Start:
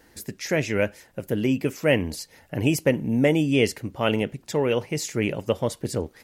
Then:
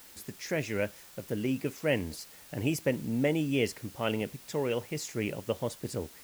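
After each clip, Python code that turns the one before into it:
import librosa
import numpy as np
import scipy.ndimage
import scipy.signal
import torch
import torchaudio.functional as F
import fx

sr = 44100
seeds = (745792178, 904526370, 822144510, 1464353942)

y = fx.dmg_noise_colour(x, sr, seeds[0], colour='white', level_db=-45.0)
y = y * librosa.db_to_amplitude(-8.0)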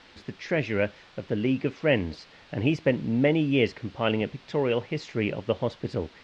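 y = scipy.signal.sosfilt(scipy.signal.butter(4, 4100.0, 'lowpass', fs=sr, output='sos'), x)
y = y * librosa.db_to_amplitude(5.5)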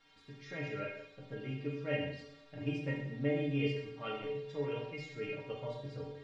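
y = fx.stiff_resonator(x, sr, f0_hz=140.0, decay_s=0.32, stiffness=0.008)
y = fx.rev_plate(y, sr, seeds[1], rt60_s=0.78, hf_ratio=0.95, predelay_ms=0, drr_db=-1.5)
y = y * librosa.db_to_amplitude(-4.0)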